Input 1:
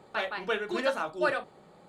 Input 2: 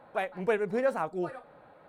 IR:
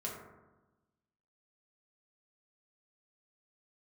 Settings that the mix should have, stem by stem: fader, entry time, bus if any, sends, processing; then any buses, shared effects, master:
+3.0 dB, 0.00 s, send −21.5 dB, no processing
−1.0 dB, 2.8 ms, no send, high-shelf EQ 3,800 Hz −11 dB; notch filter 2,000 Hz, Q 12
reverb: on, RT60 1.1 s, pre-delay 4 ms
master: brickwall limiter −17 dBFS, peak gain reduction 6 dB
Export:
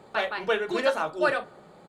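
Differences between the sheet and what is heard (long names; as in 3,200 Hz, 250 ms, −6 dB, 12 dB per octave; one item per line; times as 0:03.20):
stem 2 −1.0 dB → −9.0 dB
master: missing brickwall limiter −17 dBFS, peak gain reduction 6 dB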